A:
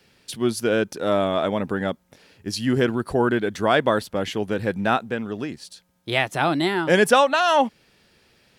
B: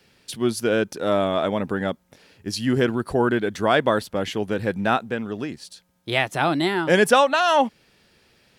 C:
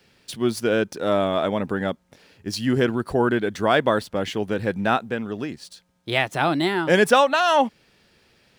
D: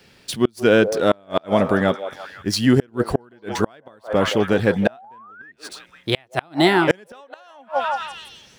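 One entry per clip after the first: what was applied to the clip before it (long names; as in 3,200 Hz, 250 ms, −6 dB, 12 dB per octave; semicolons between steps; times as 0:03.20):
no processing that can be heard
running median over 3 samples
echo through a band-pass that steps 169 ms, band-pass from 600 Hz, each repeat 0.7 octaves, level −7.5 dB; sound drawn into the spectrogram rise, 0:04.86–0:05.52, 580–1,900 Hz −15 dBFS; gate with flip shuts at −10 dBFS, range −35 dB; level +6.5 dB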